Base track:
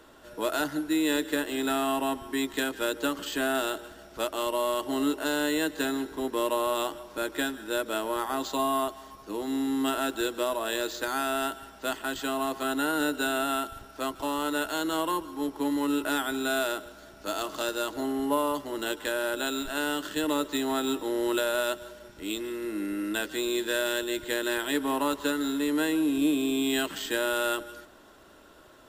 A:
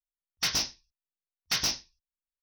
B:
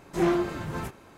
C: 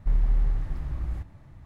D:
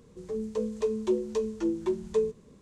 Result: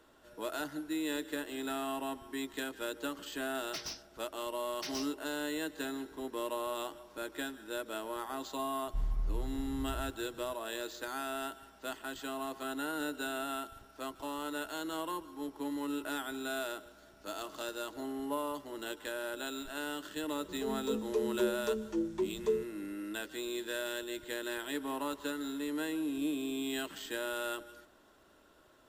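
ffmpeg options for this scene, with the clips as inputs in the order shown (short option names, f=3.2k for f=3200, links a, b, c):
-filter_complex "[0:a]volume=-9.5dB[a];[3:a]bandreject=f=1.8k:w=7.9[b];[1:a]atrim=end=2.42,asetpts=PTS-STARTPTS,volume=-14dB,afade=t=in:d=0.004:c=hsin,afade=t=out:st=2.416:d=0.004:c=hsin,adelay=3310[c];[b]atrim=end=1.65,asetpts=PTS-STARTPTS,volume=-11dB,afade=t=in:d=0.004:c=hsin,afade=t=out:st=1.646:d=0.004:c=hsin,adelay=8880[d];[4:a]atrim=end=2.61,asetpts=PTS-STARTPTS,volume=-5dB,afade=t=in:d=0.004:c=hsin,afade=t=out:st=2.606:d=0.004:c=hsin,adelay=20320[e];[a][c][d][e]amix=inputs=4:normalize=0"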